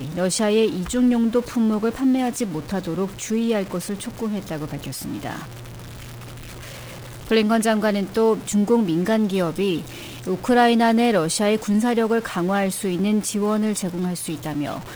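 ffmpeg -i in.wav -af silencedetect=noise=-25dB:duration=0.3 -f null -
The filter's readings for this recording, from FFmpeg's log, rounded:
silence_start: 5.39
silence_end: 7.28 | silence_duration: 1.89
silence_start: 9.80
silence_end: 10.27 | silence_duration: 0.47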